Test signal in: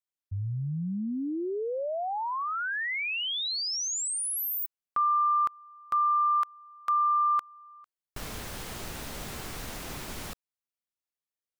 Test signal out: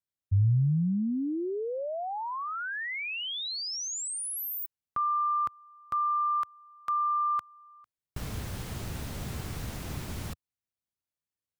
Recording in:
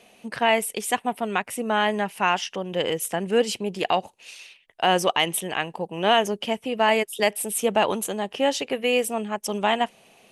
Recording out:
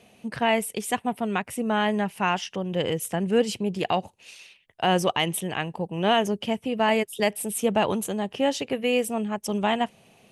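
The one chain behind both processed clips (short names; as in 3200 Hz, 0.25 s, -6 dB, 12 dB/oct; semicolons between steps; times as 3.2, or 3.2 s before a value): bell 96 Hz +13 dB 2.4 oct; gain -3.5 dB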